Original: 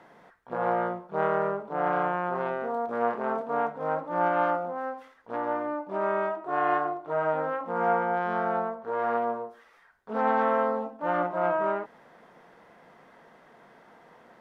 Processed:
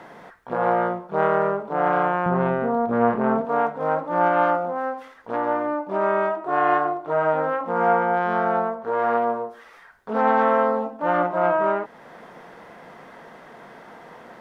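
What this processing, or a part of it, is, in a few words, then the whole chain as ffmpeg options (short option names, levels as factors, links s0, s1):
parallel compression: -filter_complex "[0:a]asettb=1/sr,asplit=3[s0][s1][s2];[s0]atrim=end=2.264[s3];[s1]atrim=start=2.26:end=3.45,asetpts=PTS-STARTPTS,afade=t=in:d=0.004:c=qsin,afade=t=out:st=1.186:d=0.004:c=qsin,bass=f=250:g=15,treble=f=4000:g=-9[s4];[s2]atrim=start=3.446[s5];[s3][s4]acrossfade=d=0.004:c1=hsin:c2=qsin[s6];[s6][s5]acrossfade=d=0.004:c1=qsin:c2=hsin,asplit=2[s7][s8];[s8]acompressor=threshold=0.00631:ratio=6,volume=0.944[s9];[s7][s9]amix=inputs=2:normalize=0,volume=1.78"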